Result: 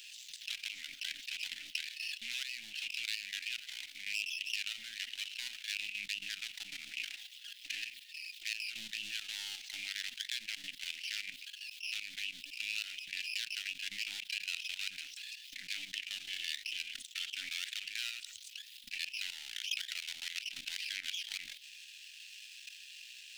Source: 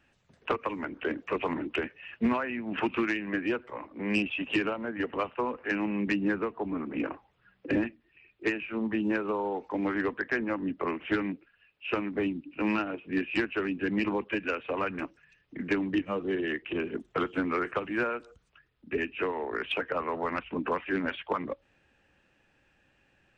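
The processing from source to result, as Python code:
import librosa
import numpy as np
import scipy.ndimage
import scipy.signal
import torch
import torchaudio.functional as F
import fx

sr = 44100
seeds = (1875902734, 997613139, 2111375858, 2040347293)

y = np.where(x < 0.0, 10.0 ** (-12.0 / 20.0) * x, x)
y = fx.level_steps(y, sr, step_db=17)
y = scipy.signal.sosfilt(scipy.signal.cheby2(4, 50, 1200.0, 'highpass', fs=sr, output='sos'), y)
y = fx.env_flatten(y, sr, amount_pct=70)
y = y * librosa.db_to_amplitude(4.5)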